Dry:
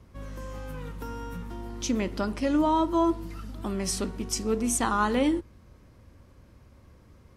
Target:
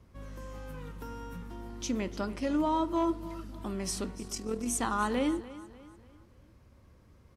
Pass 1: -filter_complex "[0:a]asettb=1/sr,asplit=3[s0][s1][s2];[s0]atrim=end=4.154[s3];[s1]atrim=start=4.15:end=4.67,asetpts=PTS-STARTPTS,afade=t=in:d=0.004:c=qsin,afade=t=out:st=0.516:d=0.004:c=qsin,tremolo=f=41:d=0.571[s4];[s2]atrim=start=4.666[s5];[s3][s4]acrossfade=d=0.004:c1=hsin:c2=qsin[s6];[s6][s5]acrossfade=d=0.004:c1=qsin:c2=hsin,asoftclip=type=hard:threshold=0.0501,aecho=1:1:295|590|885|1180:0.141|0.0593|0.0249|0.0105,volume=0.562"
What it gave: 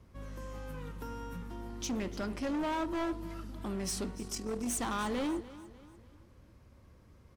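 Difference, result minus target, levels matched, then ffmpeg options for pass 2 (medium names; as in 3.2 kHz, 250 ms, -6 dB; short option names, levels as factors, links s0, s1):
hard clipper: distortion +23 dB
-filter_complex "[0:a]asettb=1/sr,asplit=3[s0][s1][s2];[s0]atrim=end=4.154[s3];[s1]atrim=start=4.15:end=4.67,asetpts=PTS-STARTPTS,afade=t=in:d=0.004:c=qsin,afade=t=out:st=0.516:d=0.004:c=qsin,tremolo=f=41:d=0.571[s4];[s2]atrim=start=4.666[s5];[s3][s4]acrossfade=d=0.004:c1=hsin:c2=qsin[s6];[s6][s5]acrossfade=d=0.004:c1=qsin:c2=hsin,asoftclip=type=hard:threshold=0.158,aecho=1:1:295|590|885|1180:0.141|0.0593|0.0249|0.0105,volume=0.562"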